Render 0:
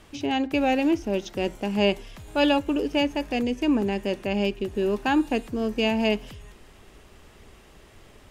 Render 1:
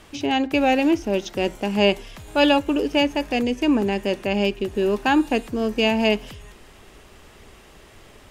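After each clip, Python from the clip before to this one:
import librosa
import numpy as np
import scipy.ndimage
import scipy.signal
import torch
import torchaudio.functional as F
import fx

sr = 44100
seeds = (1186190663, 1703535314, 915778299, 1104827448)

y = fx.low_shelf(x, sr, hz=320.0, db=-3.5)
y = F.gain(torch.from_numpy(y), 5.0).numpy()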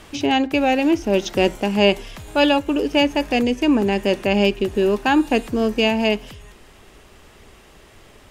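y = fx.rider(x, sr, range_db=5, speed_s=0.5)
y = F.gain(torch.from_numpy(y), 2.5).numpy()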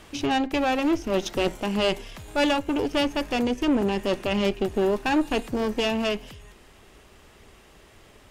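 y = fx.tube_stage(x, sr, drive_db=16.0, bias=0.75)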